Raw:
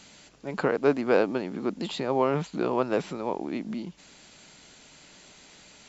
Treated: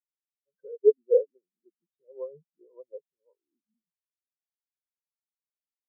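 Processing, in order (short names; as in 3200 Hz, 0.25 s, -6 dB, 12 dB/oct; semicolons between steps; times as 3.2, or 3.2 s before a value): comb 1.9 ms, depth 41%; spectral expander 4:1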